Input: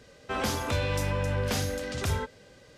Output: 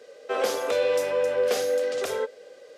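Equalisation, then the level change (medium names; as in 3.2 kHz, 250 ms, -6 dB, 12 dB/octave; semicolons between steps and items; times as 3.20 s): resonant high-pass 480 Hz, resonance Q 4.1; band-stop 930 Hz, Q 7.5; 0.0 dB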